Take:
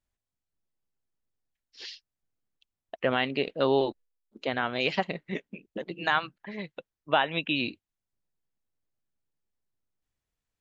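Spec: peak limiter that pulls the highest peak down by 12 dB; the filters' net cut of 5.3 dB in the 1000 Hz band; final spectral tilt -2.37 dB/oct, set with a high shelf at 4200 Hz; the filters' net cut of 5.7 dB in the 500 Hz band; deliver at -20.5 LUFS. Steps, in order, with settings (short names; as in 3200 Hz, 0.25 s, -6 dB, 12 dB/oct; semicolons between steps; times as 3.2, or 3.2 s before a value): bell 500 Hz -6 dB; bell 1000 Hz -5.5 dB; high shelf 4200 Hz +6.5 dB; gain +16.5 dB; limiter -6.5 dBFS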